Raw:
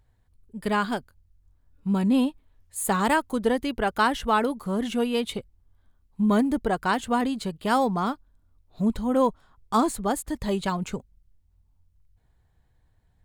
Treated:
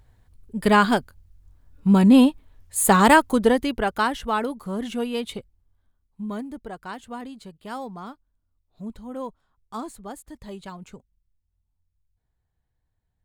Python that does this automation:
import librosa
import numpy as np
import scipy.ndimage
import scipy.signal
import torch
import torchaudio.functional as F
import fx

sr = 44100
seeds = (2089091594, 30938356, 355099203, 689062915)

y = fx.gain(x, sr, db=fx.line((3.22, 8.0), (4.17, -2.0), (5.38, -2.0), (6.47, -11.5)))